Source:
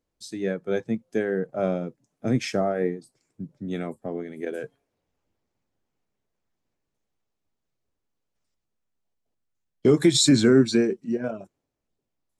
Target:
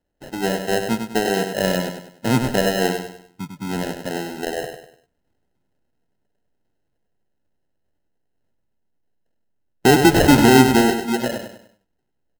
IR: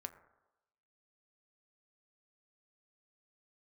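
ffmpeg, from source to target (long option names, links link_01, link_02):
-af "acrusher=samples=38:mix=1:aa=0.000001,aecho=1:1:99|198|297|396:0.447|0.17|0.0645|0.0245,volume=4.5dB"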